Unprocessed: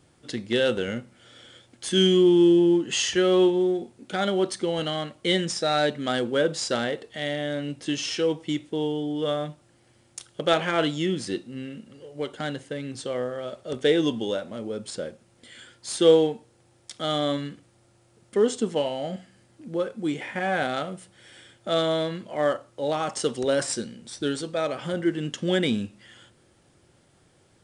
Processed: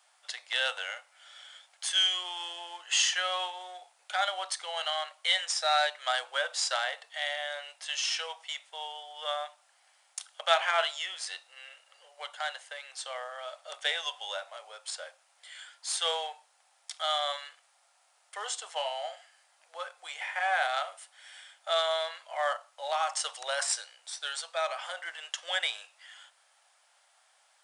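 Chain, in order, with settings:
Butterworth high-pass 670 Hz 48 dB per octave

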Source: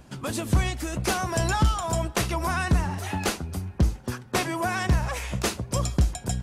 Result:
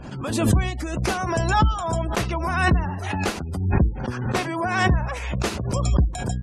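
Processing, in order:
gate on every frequency bin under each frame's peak −30 dB strong
high-shelf EQ 5,200 Hz −8 dB
background raised ahead of every attack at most 47 dB per second
level +1.5 dB

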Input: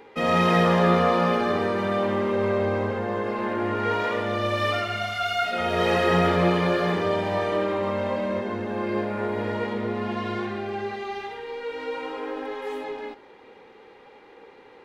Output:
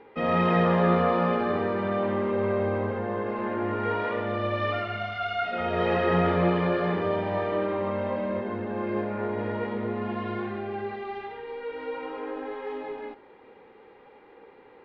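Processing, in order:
high-frequency loss of the air 330 metres
level −1.5 dB

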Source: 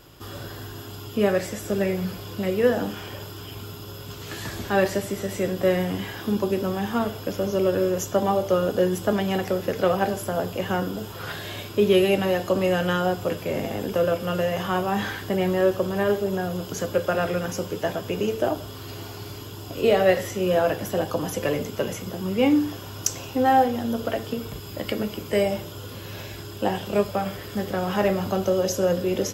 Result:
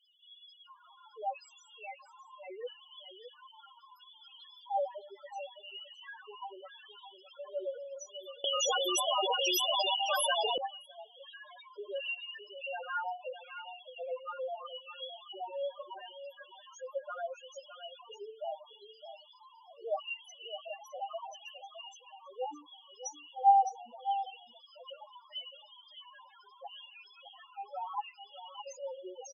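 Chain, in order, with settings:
flanger 0.28 Hz, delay 3.3 ms, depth 7.9 ms, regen +39%
auto-filter high-pass square 0.75 Hz 910–3,000 Hz
spectral peaks only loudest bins 2
single-tap delay 612 ms −10.5 dB
0:08.44–0:10.58: every bin compressed towards the loudest bin 10 to 1
level −3 dB

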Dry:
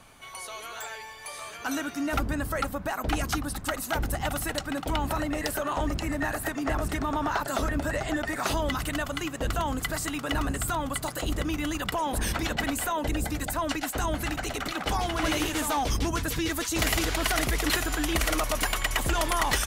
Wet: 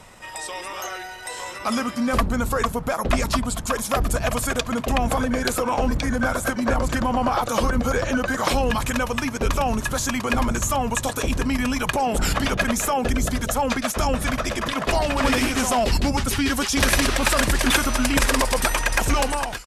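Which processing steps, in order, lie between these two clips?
fade-out on the ending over 0.54 s
pitch shifter −3 semitones
level +7 dB

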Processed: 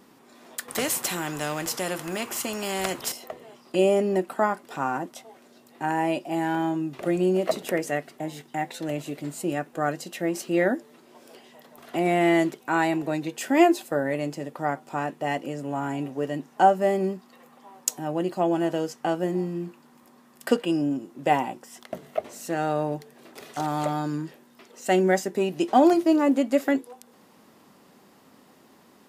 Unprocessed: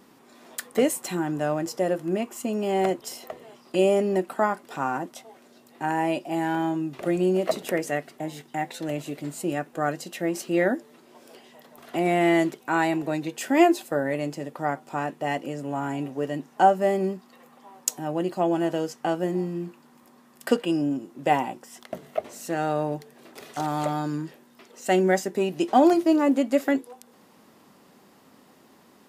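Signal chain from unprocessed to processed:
0:00.68–0:03.12: every bin compressed towards the loudest bin 2 to 1

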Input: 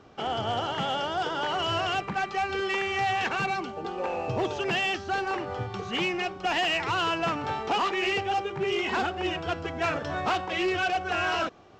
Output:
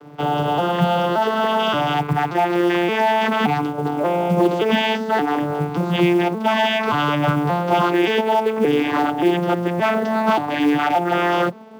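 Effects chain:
vocoder with an arpeggio as carrier minor triad, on D3, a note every 576 ms
in parallel at −2 dB: brickwall limiter −26 dBFS, peak gain reduction 10.5 dB
on the sum: floating-point word with a short mantissa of 4 bits
level +7.5 dB

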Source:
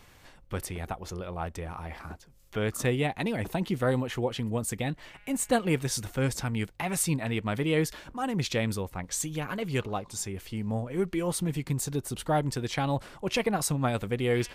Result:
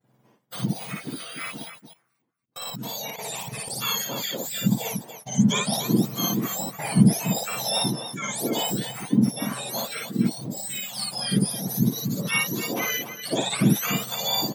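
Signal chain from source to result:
frequency axis turned over on the octave scale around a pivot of 1,300 Hz
0:01.64–0:03.70: output level in coarse steps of 19 dB
downward expander −43 dBFS
loudspeakers that aren't time-aligned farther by 19 metres −1 dB, 100 metres −9 dB
level +2.5 dB

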